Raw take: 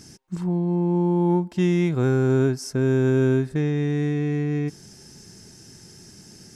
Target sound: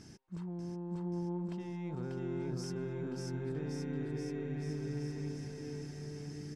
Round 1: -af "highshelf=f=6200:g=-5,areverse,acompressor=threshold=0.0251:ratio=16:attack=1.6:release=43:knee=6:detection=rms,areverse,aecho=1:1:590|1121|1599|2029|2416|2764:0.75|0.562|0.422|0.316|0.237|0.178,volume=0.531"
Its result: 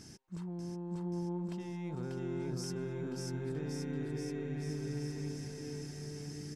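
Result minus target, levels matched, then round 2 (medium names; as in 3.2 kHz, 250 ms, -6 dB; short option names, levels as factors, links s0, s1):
8 kHz band +4.5 dB
-af "highshelf=f=6200:g=-16,areverse,acompressor=threshold=0.0251:ratio=16:attack=1.6:release=43:knee=6:detection=rms,areverse,aecho=1:1:590|1121|1599|2029|2416|2764:0.75|0.562|0.422|0.316|0.237|0.178,volume=0.531"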